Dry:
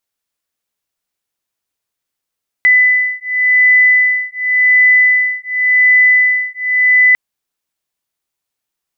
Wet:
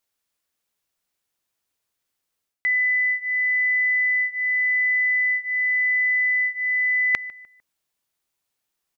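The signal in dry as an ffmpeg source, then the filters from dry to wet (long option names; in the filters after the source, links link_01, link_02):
-f lavfi -i "aevalsrc='0.282*(sin(2*PI*2000*t)+sin(2*PI*2000.9*t))':duration=4.5:sample_rate=44100"
-filter_complex "[0:a]asplit=2[link_01][link_02];[link_02]adelay=150,lowpass=frequency=2000:poles=1,volume=-23dB,asplit=2[link_03][link_04];[link_04]adelay=150,lowpass=frequency=2000:poles=1,volume=0.41,asplit=2[link_05][link_06];[link_06]adelay=150,lowpass=frequency=2000:poles=1,volume=0.41[link_07];[link_01][link_03][link_05][link_07]amix=inputs=4:normalize=0,areverse,acompressor=threshold=-20dB:ratio=8,areverse"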